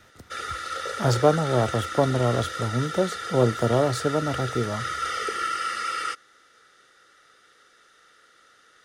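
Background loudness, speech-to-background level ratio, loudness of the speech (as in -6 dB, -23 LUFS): -30.5 LUFS, 6.0 dB, -24.5 LUFS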